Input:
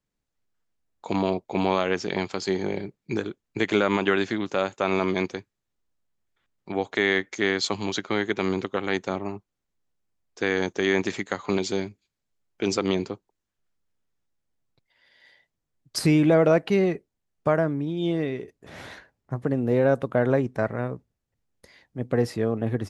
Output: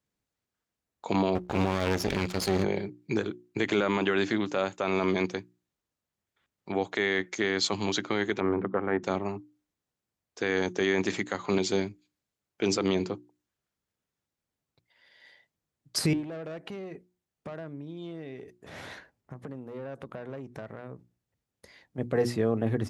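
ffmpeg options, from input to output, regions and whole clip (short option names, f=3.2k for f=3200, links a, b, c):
-filter_complex "[0:a]asettb=1/sr,asplit=3[a][b][c];[a]atrim=end=1.354[d];[b]atrim=start=1.35:end=2.64,asetpts=PTS-STARTPTS,afade=t=in:d=0.004:c=qsin,afade=t=out:st=1.286:d=0.004:c=qsin,aeval=exprs='val(0)+0.00398*(sin(2*PI*60*n/s)+sin(2*PI*2*60*n/s)/2+sin(2*PI*3*60*n/s)/3+sin(2*PI*4*60*n/s)/4+sin(2*PI*5*60*n/s)/5)':c=same,acontrast=81,aeval=exprs='max(val(0),0)':c=same[e];[c]atrim=start=2.636[f];[d][e]acrossfade=d=0.004:c1=hsin:c2=qsin[g];[g][f]acrossfade=d=0.004:c1=qsin:c2=hsin,asettb=1/sr,asplit=3[h][i][j];[h]atrim=end=8.404[k];[i]atrim=start=8.4:end=9.03,asetpts=PTS-STARTPTS,afade=t=in:d=0.004:c=qsin,afade=t=out:st=0.626:d=0.004:c=qsin,lowpass=f=1.7k:w=0.5412,lowpass=f=1.7k:w=1.3066,bandreject=f=63.15:t=h:w=4,bandreject=f=126.3:t=h:w=4,bandreject=f=189.45:t=h:w=4,bandreject=f=252.6:t=h:w=4[l];[j]atrim=start=9.026[m];[k][l]acrossfade=d=0.004:c1=hsin:c2=qsin[n];[n][m]acrossfade=d=0.004:c1=qsin:c2=hsin,asettb=1/sr,asplit=3[o][p][q];[o]atrim=end=16.134[r];[p]atrim=start=16.13:end=21.98,asetpts=PTS-STARTPTS,afade=t=in:d=0.004:c=qsin,afade=t=out:st=5.846:d=0.004:c=qsin,aeval=exprs='(tanh(7.94*val(0)+0.35)-tanh(0.35))/7.94':c=same,acompressor=threshold=-37dB:ratio=5:attack=3.2:release=140:knee=1:detection=peak[s];[q]atrim=start=21.976[t];[r][s]acrossfade=d=0.004:c1=hsin:c2=qsin[u];[u][t]acrossfade=d=0.004:c1=qsin:c2=hsin,highpass=57,bandreject=f=60:t=h:w=6,bandreject=f=120:t=h:w=6,bandreject=f=180:t=h:w=6,bandreject=f=240:t=h:w=6,bandreject=f=300:t=h:w=6,bandreject=f=360:t=h:w=6,alimiter=limit=-15.5dB:level=0:latency=1:release=16"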